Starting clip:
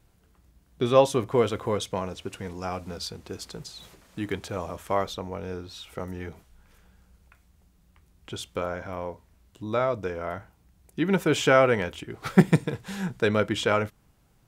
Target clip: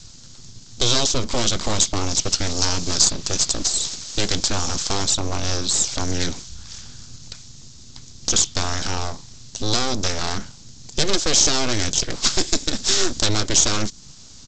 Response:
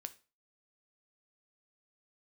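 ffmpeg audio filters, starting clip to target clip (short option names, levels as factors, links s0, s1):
-filter_complex "[0:a]equalizer=f=470:w=0.61:g=-12.5,acrossover=split=340|3700[s0][s1][s2];[s0]acompressor=threshold=0.0158:ratio=4[s3];[s1]acompressor=threshold=0.00631:ratio=4[s4];[s2]acompressor=threshold=0.00251:ratio=4[s5];[s3][s4][s5]amix=inputs=3:normalize=0,apsyclip=35.5,aresample=16000,aeval=exprs='abs(val(0))':c=same,aresample=44100,highshelf=f=3300:t=q:w=1.5:g=12.5,volume=0.282"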